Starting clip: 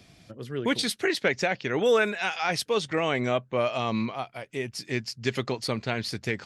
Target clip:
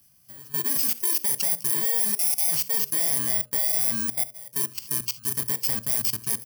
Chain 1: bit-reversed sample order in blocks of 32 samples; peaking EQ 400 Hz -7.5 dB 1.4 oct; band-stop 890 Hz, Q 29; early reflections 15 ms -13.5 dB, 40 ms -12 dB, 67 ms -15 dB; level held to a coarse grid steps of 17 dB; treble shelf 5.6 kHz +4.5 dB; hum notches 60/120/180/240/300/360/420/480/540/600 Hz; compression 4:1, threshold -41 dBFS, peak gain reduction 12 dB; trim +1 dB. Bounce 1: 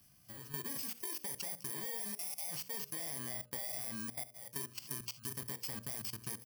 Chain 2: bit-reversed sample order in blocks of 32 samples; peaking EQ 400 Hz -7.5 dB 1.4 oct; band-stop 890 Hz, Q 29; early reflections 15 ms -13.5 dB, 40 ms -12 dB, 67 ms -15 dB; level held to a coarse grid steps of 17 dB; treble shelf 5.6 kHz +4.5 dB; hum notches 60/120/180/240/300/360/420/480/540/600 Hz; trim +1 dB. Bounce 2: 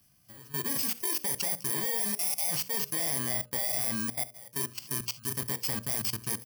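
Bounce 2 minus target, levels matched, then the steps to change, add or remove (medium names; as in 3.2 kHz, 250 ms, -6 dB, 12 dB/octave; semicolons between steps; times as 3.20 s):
4 kHz band +4.0 dB
change: treble shelf 5.6 kHz +12.5 dB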